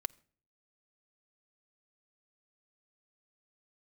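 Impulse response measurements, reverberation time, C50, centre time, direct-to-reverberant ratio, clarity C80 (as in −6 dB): non-exponential decay, 26.0 dB, 2 ms, 9.5 dB, 28.0 dB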